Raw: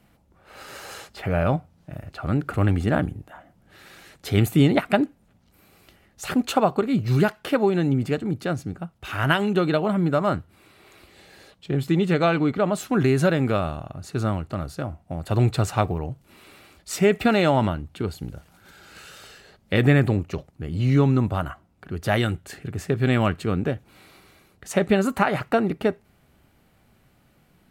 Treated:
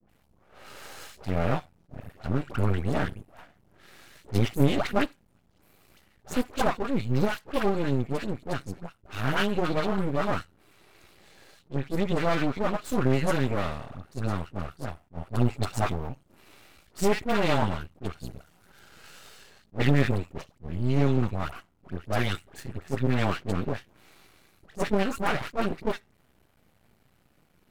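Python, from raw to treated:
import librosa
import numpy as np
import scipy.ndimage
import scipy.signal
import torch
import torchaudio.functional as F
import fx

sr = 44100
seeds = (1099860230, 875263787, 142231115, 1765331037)

y = fx.dispersion(x, sr, late='highs', ms=95.0, hz=1000.0)
y = np.maximum(y, 0.0)
y = fx.attack_slew(y, sr, db_per_s=400.0)
y = y * 10.0 ** (-1.0 / 20.0)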